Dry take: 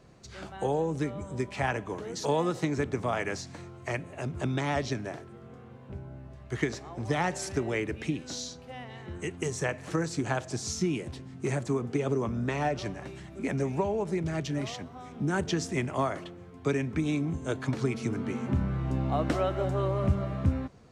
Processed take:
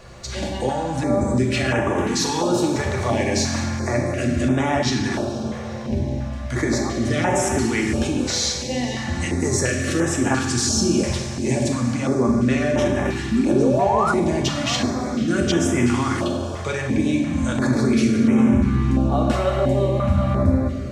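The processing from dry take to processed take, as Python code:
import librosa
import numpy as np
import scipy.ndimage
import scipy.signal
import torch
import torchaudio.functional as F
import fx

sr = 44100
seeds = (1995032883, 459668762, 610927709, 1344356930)

p1 = x + 0.38 * np.pad(x, (int(3.5 * sr / 1000.0), 0))[:len(x)]
p2 = fx.over_compress(p1, sr, threshold_db=-38.0, ratio=-1.0)
p3 = p1 + (p2 * librosa.db_to_amplitude(1.5))
p4 = fx.spec_paint(p3, sr, seeds[0], shape='rise', start_s=13.31, length_s=0.81, low_hz=210.0, high_hz=1500.0, level_db=-27.0)
p5 = p4 + fx.echo_diffused(p4, sr, ms=482, feedback_pct=59, wet_db=-15.0, dry=0)
p6 = fx.rev_fdn(p5, sr, rt60_s=1.6, lf_ratio=1.0, hf_ratio=0.8, size_ms=25.0, drr_db=0.5)
p7 = fx.filter_held_notch(p6, sr, hz=2.9, low_hz=270.0, high_hz=4400.0)
y = p7 * librosa.db_to_amplitude(4.5)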